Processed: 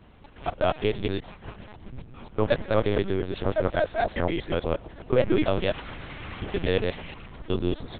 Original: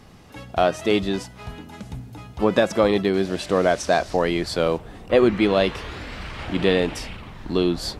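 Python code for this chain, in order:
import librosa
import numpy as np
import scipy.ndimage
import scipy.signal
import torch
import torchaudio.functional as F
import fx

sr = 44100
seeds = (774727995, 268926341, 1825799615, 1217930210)

y = fx.local_reverse(x, sr, ms=119.0)
y = fx.lpc_vocoder(y, sr, seeds[0], excitation='pitch_kept', order=8)
y = y * 10.0 ** (-4.5 / 20.0)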